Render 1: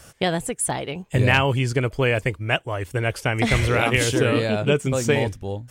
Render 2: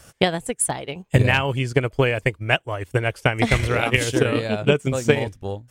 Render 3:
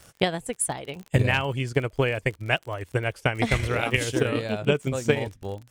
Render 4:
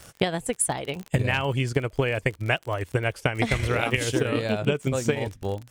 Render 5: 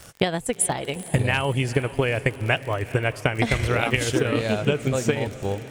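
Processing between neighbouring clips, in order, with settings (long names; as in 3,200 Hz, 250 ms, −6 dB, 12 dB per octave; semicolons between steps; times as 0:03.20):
transient designer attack +8 dB, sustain −6 dB; level −2 dB
surface crackle 29 per second −29 dBFS; level −4.5 dB
downward compressor, threshold −24 dBFS, peak gain reduction 9.5 dB; level +4.5 dB
feedback delay with all-pass diffusion 454 ms, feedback 56%, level −15.5 dB; level +2 dB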